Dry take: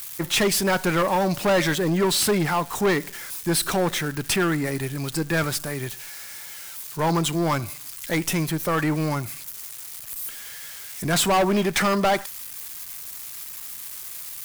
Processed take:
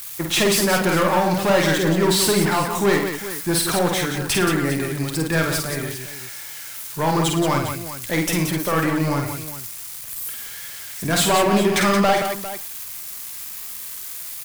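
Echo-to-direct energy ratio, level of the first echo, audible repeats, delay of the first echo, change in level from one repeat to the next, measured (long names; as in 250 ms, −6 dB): −1.5 dB, −4.0 dB, 4, 50 ms, repeats not evenly spaced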